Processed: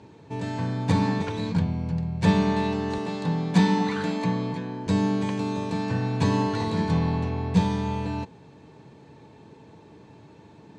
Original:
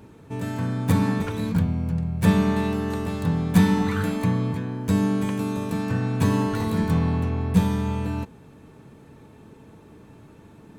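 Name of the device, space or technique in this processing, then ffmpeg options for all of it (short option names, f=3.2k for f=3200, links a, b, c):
car door speaker: -filter_complex "[0:a]highpass=100,equalizer=f=230:t=q:w=4:g=-5,equalizer=f=900:t=q:w=4:g=4,equalizer=f=1.3k:t=q:w=4:g=-7,equalizer=f=4.3k:t=q:w=4:g=5,lowpass=f=7.1k:w=0.5412,lowpass=f=7.1k:w=1.3066,asettb=1/sr,asplit=3[a][b][c];[a]atrim=end=2.984[d];[b]atrim=start=2.98:end=4.87,asetpts=PTS-STARTPTS,afade=t=in:d=0.004:c=qsin,afade=t=out:st=1.886:d=0.004:c=qsin,highpass=f=140:w=0.5412,highpass=f=140:w=1.3066[e];[c]atrim=start=4.866[f];[d][e]acrossfade=d=0.004:c1=hsin:c2=qsin[g];[g][f]acrossfade=d=0.004:c1=qsin:c2=hsin"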